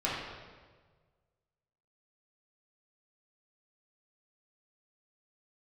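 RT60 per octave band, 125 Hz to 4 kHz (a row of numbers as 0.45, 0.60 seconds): 2.0, 1.5, 1.6, 1.4, 1.3, 1.1 seconds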